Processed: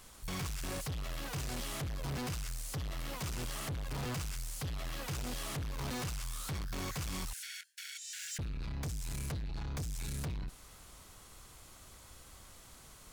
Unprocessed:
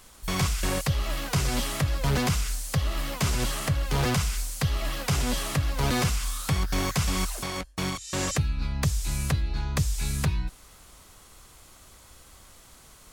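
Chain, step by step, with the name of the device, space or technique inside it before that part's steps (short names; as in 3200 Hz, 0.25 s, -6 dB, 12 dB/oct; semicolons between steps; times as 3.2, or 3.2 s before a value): open-reel tape (soft clip -33.5 dBFS, distortion -6 dB; bell 120 Hz +2.5 dB 1.17 oct; white noise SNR 47 dB); 7.33–8.39 Chebyshev high-pass 1400 Hz, order 10; gain -3.5 dB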